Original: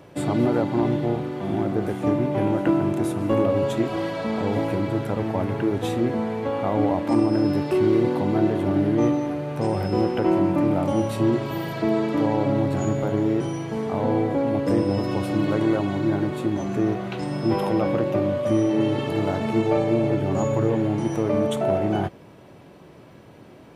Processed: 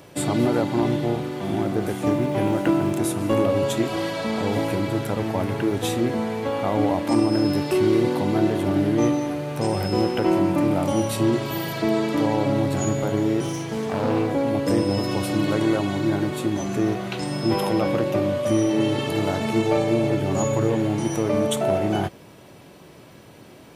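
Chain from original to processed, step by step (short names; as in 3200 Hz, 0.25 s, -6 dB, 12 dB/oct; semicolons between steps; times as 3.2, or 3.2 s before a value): 13.43–14.31 self-modulated delay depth 0.23 ms; high shelf 3200 Hz +11.5 dB; 2.05–2.96 crackle 340/s -38 dBFS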